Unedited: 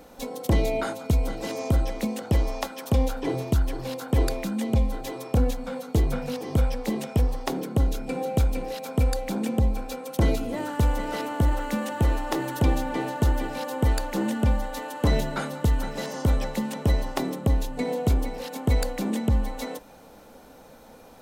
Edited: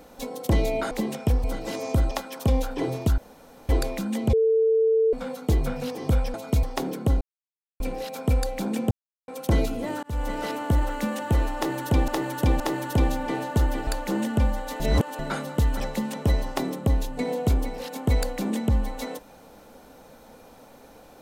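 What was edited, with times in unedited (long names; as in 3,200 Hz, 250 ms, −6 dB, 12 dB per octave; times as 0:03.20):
0:00.91–0:01.20: swap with 0:06.80–0:07.33
0:01.87–0:02.57: remove
0:03.64–0:04.15: fill with room tone
0:04.79–0:05.59: beep over 446 Hz −17 dBFS
0:07.91–0:08.50: silence
0:09.61–0:09.98: silence
0:10.73–0:11.01: fade in
0:12.26–0:12.78: repeat, 3 plays
0:13.53–0:13.93: remove
0:14.86–0:15.25: reverse
0:15.86–0:16.40: remove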